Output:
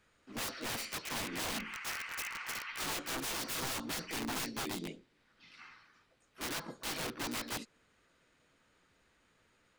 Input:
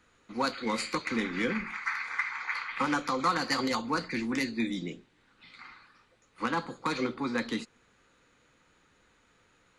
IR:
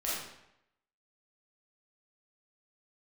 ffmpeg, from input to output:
-filter_complex "[0:a]aeval=exprs='(mod(22.4*val(0)+1,2)-1)/22.4':c=same,asplit=2[a][b];[b]asetrate=55563,aresample=44100,atempo=0.793701,volume=-3dB[c];[a][c]amix=inputs=2:normalize=0,volume=-7dB"

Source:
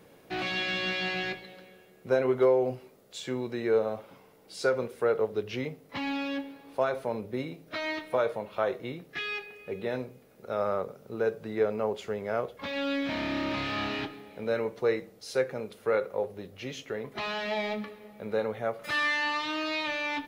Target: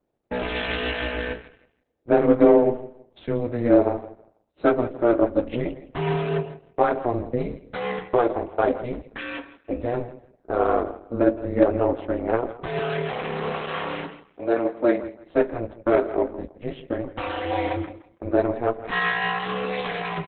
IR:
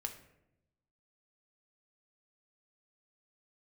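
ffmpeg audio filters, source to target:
-filter_complex "[0:a]agate=range=-26dB:threshold=-42dB:ratio=16:detection=peak,asettb=1/sr,asplit=3[a][b][c];[a]atrim=end=12.794[d];[b]atrim=start=12.79:end=15.03,asetpts=PTS-STARTPTS,afade=t=in:d=0.004:c=qsin,afade=t=out:st=2.236:d=0.004:c=qsin,highpass=f=340:w=0.5412,highpass=f=340:w=1.3066[e];[c]atrim=start=15.026[f];[d][e]acrossfade=d=0.004:c1=hsin:c2=qsin[g];[g][f]acrossfade=d=0.004:c1=qsin:c2=hsin,adynamicequalizer=threshold=0.00178:dfrequency=3100:dqfactor=6.3:tfrequency=3100:tqfactor=6.3:attack=5:release=100:ratio=0.375:range=4:mode=boostabove:tftype=bell,acontrast=37,aeval=exprs='val(0)*sin(2*PI*120*n/s)':c=same,adynamicsmooth=sensitivity=0.5:basefreq=1.4k,asplit=2[h][i];[i]adelay=18,volume=-11dB[j];[h][j]amix=inputs=2:normalize=0,aecho=1:1:163|326|489:0.178|0.0427|0.0102,volume=6dB" -ar 48000 -c:a libopus -b:a 8k

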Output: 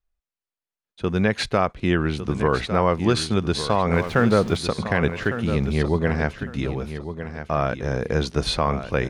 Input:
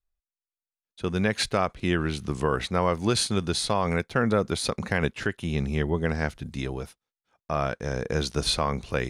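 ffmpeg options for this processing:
-filter_complex "[0:a]asettb=1/sr,asplit=3[a][b][c];[a]atrim=end=3.934[d];[b]atrim=start=3.93:end=4.57,asetpts=PTS-STARTPTS,afade=t=in:d=0.004:c=qsin,afade=t=out:st=0.636:d=0.004:c=qsin,aeval=exprs='val(0)+0.5*0.02*sgn(val(0))':c=same[e];[c]atrim=start=4.566[f];[d][e]acrossfade=d=0.004:c1=hsin:c2=qsin[g];[g][f]acrossfade=d=0.004:c1=qsin:c2=hsin,lowpass=f=2.9k:p=1,asplit=2[h][i];[i]aecho=0:1:1155|2310|3465:0.299|0.0746|0.0187[j];[h][j]amix=inputs=2:normalize=0,volume=4.5dB"

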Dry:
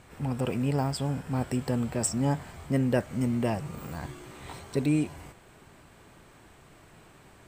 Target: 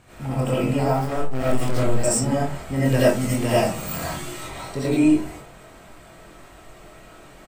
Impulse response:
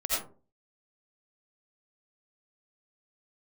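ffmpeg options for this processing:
-filter_complex "[0:a]asplit=3[a][b][c];[a]afade=t=out:st=2.76:d=0.02[d];[b]highshelf=f=2.2k:g=10.5,afade=t=in:st=2.76:d=0.02,afade=t=out:st=4.38:d=0.02[e];[c]afade=t=in:st=4.38:d=0.02[f];[d][e][f]amix=inputs=3:normalize=0,asoftclip=type=tanh:threshold=-16dB,asettb=1/sr,asplit=3[g][h][i];[g]atrim=end=0.884[j];[h]atrim=start=0.88:end=1.83,asetpts=PTS-STARTPTS,afade=t=in:d=0.004:c=qsin,afade=t=out:st=0.946:d=0.004:c=qsin,acrusher=bits=3:mix=0:aa=0.5[k];[i]atrim=start=1.826[l];[j][k]acrossfade=d=0.004:c1=hsin:c2=qsin[m];[m][l]acrossfade=d=0.004:c1=qsin:c2=hsin,asplit=2[n][o];[o]adelay=23,volume=-5.5dB[p];[n][p]amix=inputs=2:normalize=0[q];[1:a]atrim=start_sample=2205[r];[q][r]afir=irnorm=-1:irlink=0"

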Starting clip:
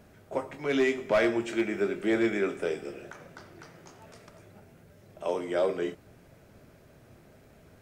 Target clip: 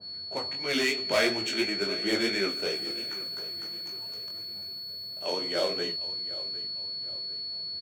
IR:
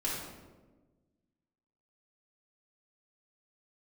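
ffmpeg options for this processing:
-filter_complex "[0:a]highpass=f=74:w=0.5412,highpass=f=74:w=1.3066,highshelf=f=4k:g=11.5,acrusher=bits=4:mode=log:mix=0:aa=0.000001,adynamicsmooth=sensitivity=6:basefreq=3.7k,flanger=delay=15.5:depth=6.9:speed=2.9,aeval=exprs='val(0)+0.0112*sin(2*PI*4400*n/s)':c=same,asettb=1/sr,asplit=3[a][b][c];[a]atrim=end=2.484[d];[b]atrim=start=2.48:end=5.26,asetpts=PTS-STARTPTS,afade=t=in:d=0.004:c=qsin,afade=t=out:st=2.776:d=0.004:c=qsin,aeval=exprs='sgn(val(0))*max(abs(val(0))-0.00178,0)':c=same[e];[c]atrim=start=5.256[f];[d][e]acrossfade=d=0.004:c1=hsin:c2=qsin[g];[g][f]acrossfade=d=0.004:c1=qsin:c2=hsin,aecho=1:1:755|1510|2265:0.141|0.0579|0.0237,adynamicequalizer=threshold=0.00398:dfrequency=1900:dqfactor=0.7:tfrequency=1900:tqfactor=0.7:attack=5:release=100:ratio=0.375:range=3.5:mode=boostabove:tftype=highshelf"

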